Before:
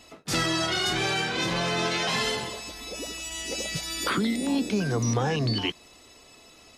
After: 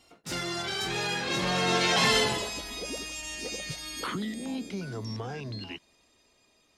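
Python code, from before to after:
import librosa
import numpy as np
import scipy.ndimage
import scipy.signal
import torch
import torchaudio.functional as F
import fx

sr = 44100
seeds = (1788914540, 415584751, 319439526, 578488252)

y = fx.doppler_pass(x, sr, speed_mps=21, closest_m=11.0, pass_at_s=2.21)
y = y * librosa.db_to_amplitude(4.0)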